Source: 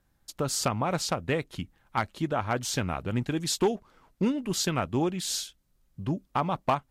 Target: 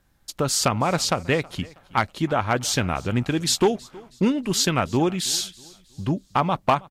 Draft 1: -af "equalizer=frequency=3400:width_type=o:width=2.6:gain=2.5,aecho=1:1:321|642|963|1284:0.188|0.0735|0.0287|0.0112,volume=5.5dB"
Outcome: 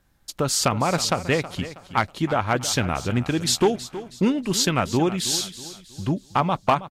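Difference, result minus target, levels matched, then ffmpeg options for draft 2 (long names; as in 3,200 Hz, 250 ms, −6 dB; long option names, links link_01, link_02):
echo-to-direct +8.5 dB
-af "equalizer=frequency=3400:width_type=o:width=2.6:gain=2.5,aecho=1:1:321|642|963:0.0708|0.0276|0.0108,volume=5.5dB"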